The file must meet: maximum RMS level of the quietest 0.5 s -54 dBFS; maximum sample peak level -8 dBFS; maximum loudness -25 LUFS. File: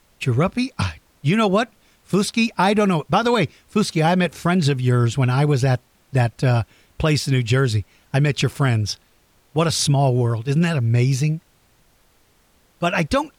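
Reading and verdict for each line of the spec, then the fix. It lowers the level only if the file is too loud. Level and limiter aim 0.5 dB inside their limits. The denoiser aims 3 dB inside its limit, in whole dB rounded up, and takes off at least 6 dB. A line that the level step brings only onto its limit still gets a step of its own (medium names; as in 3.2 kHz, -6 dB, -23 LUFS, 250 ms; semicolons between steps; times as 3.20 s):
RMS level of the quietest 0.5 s -58 dBFS: pass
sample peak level -7.0 dBFS: fail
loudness -20.0 LUFS: fail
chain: trim -5.5 dB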